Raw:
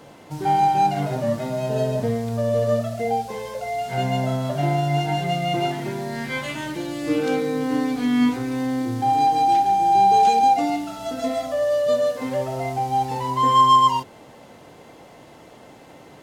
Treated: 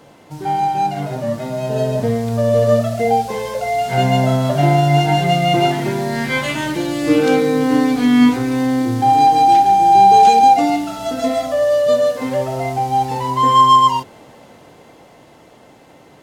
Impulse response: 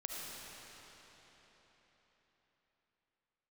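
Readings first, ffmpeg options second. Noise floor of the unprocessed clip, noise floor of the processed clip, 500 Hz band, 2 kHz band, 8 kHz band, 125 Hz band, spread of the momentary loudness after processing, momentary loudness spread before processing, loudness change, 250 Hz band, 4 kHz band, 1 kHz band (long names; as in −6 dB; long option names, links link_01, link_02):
−46 dBFS, −46 dBFS, +6.5 dB, +7.5 dB, +6.5 dB, +7.0 dB, 11 LU, 12 LU, +6.5 dB, +7.5 dB, +6.5 dB, +6.0 dB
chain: -af "dynaudnorm=framelen=130:gausssize=31:maxgain=11.5dB"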